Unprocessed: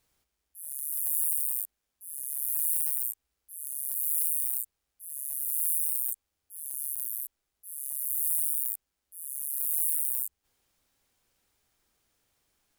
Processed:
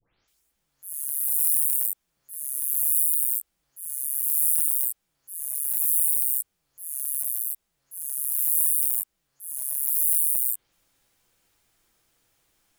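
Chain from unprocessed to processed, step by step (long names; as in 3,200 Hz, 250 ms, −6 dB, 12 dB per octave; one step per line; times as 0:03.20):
every frequency bin delayed by itself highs late, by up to 279 ms
level +6 dB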